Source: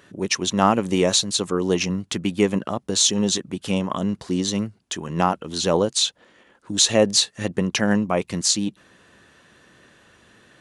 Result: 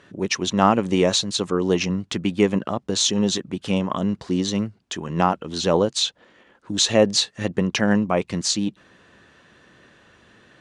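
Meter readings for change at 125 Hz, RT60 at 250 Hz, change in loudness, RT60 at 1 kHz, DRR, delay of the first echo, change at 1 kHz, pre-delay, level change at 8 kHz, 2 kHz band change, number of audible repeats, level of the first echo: +1.0 dB, none, -0.5 dB, none, none, none, +0.5 dB, none, -4.0 dB, +0.5 dB, none, none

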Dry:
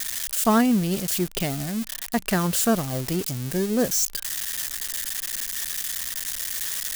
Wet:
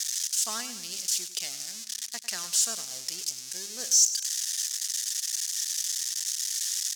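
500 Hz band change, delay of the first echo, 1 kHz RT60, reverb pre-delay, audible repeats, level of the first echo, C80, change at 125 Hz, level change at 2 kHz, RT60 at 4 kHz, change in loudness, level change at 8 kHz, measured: -22.0 dB, 0.1 s, none, none, 4, -13.0 dB, none, under -30 dB, -10.0 dB, none, -3.0 dB, +3.5 dB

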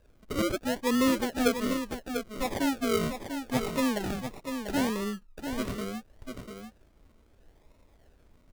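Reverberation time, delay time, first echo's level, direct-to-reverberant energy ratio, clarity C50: none, 0.694 s, -7.5 dB, none, none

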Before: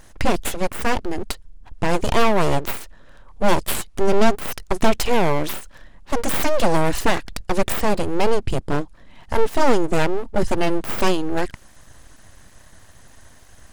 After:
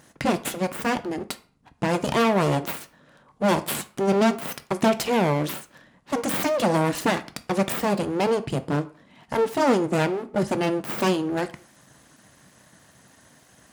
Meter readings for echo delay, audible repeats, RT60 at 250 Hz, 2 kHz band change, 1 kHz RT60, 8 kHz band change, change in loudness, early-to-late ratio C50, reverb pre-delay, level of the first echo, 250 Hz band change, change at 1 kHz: none, none, 0.40 s, -3.0 dB, 0.45 s, -3.0 dB, -2.0 dB, 17.0 dB, 3 ms, none, 0.0 dB, -3.0 dB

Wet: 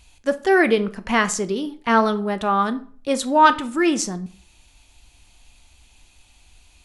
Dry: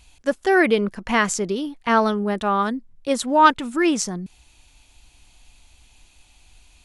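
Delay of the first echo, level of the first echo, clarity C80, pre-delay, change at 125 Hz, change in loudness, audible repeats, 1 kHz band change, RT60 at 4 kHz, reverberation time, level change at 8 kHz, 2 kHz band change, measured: none, none, 21.5 dB, 4 ms, 0.0 dB, +0.5 dB, none, +1.0 dB, 0.35 s, 0.50 s, +0.5 dB, +0.5 dB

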